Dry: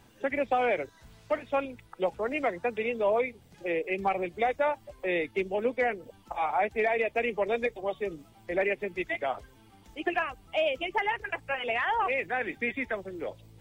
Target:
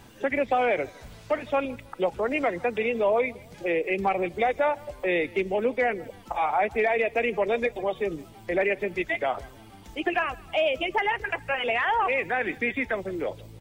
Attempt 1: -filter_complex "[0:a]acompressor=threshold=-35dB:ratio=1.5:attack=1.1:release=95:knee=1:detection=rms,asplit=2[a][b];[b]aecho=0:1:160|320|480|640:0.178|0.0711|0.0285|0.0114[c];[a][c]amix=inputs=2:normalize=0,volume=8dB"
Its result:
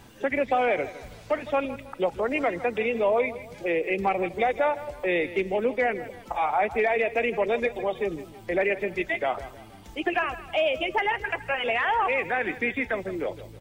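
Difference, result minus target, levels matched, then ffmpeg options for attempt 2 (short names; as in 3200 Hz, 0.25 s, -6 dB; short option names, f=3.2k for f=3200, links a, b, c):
echo-to-direct +8.5 dB
-filter_complex "[0:a]acompressor=threshold=-35dB:ratio=1.5:attack=1.1:release=95:knee=1:detection=rms,asplit=2[a][b];[b]aecho=0:1:160|320|480:0.0668|0.0267|0.0107[c];[a][c]amix=inputs=2:normalize=0,volume=8dB"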